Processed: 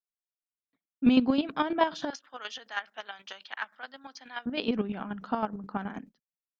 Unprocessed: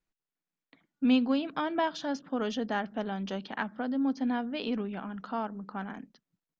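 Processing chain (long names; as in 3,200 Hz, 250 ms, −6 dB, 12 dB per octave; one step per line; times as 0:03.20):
downward expander −47 dBFS
0:02.10–0:04.46: high-pass filter 1,400 Hz 12 dB per octave
square-wave tremolo 9.4 Hz, depth 60%, duty 25%
level +7 dB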